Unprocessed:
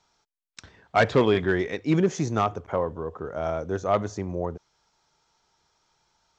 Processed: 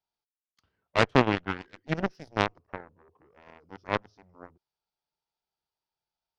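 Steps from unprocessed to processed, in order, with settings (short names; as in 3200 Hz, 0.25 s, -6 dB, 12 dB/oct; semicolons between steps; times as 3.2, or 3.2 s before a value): formant shift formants -3 st; added harmonics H 3 -10 dB, 7 -38 dB, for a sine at -7 dBFS; gain +5 dB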